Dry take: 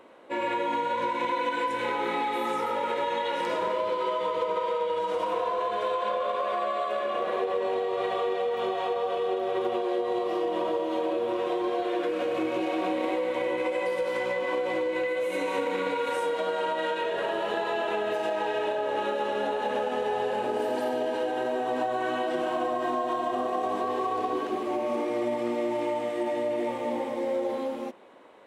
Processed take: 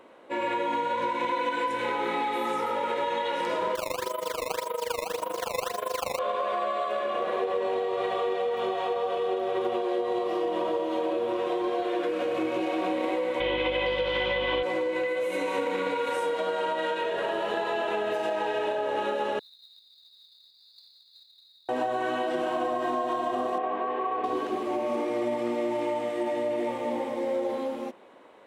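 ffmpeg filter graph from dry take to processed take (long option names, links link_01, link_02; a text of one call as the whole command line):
ffmpeg -i in.wav -filter_complex "[0:a]asettb=1/sr,asplit=3[link_01][link_02][link_03];[link_01]atrim=end=3.754[link_04];[link_02]atrim=start=3.75:end=6.19,asetpts=PTS-STARTPTS,afade=type=in:duration=0.004:curve=qsin,afade=type=out:start_time=2.436:duration=0.004:curve=qsin,tremolo=f=25:d=0.857,acrusher=samples=16:mix=1:aa=0.000001:lfo=1:lforange=25.6:lforate=1.8[link_05];[link_03]atrim=start=6.186[link_06];[link_04][link_05]acrossfade=duration=0.004:curve1=hsin:curve2=qsin[link_07];[link_07][link_06]acrossfade=duration=0.004:curve1=qsin:curve2=hsin,asettb=1/sr,asplit=3[link_08][link_09][link_10];[link_08]atrim=end=13.404[link_11];[link_09]atrim=start=13.4:end=14.63,asetpts=PTS-STARTPTS,afade=type=in:duration=0.004:curve=qsin,afade=type=out:start_time=1.226:duration=0.004:curve=qsin,lowpass=frequency=3300:width_type=q:width=5.8,aeval=exprs='val(0)+0.00794*(sin(2*PI*50*n/s)+sin(2*PI*2*50*n/s)/2+sin(2*PI*3*50*n/s)/3+sin(2*PI*4*50*n/s)/4+sin(2*PI*5*50*n/s)/5)':channel_layout=same[link_12];[link_10]atrim=start=14.626[link_13];[link_11][link_12]acrossfade=duration=0.004:curve1=hsin:curve2=qsin[link_14];[link_14][link_13]acrossfade=duration=0.004:curve1=qsin:curve2=hsin,asettb=1/sr,asplit=3[link_15][link_16][link_17];[link_15]atrim=end=19.394[link_18];[link_16]atrim=start=19.39:end=21.69,asetpts=PTS-STARTPTS,afade=type=in:duration=0.004:curve=qsin,afade=type=out:start_time=2.296:duration=0.004:curve=qsin,asuperpass=centerf=4200:order=20:qfactor=3,acrusher=bits=4:mode=log:mix=0:aa=0.000001[link_19];[link_17]atrim=start=21.686[link_20];[link_18][link_19]acrossfade=duration=0.004:curve1=hsin:curve2=qsin[link_21];[link_21][link_20]acrossfade=duration=0.004:curve1=qsin:curve2=hsin,asettb=1/sr,asplit=3[link_22][link_23][link_24];[link_22]atrim=end=23.584[link_25];[link_23]atrim=start=23.58:end=24.24,asetpts=PTS-STARTPTS,afade=type=in:duration=0.004:curve=qsin,afade=type=out:start_time=0.656:duration=0.004:curve=qsin,lowpass=frequency=2600:width=0.5412,lowpass=frequency=2600:width=1.3066,aemphasis=mode=production:type=bsi[link_26];[link_24]atrim=start=24.236[link_27];[link_25][link_26]acrossfade=duration=0.004:curve1=hsin:curve2=qsin[link_28];[link_28][link_27]acrossfade=duration=0.004:curve1=qsin:curve2=hsin" out.wav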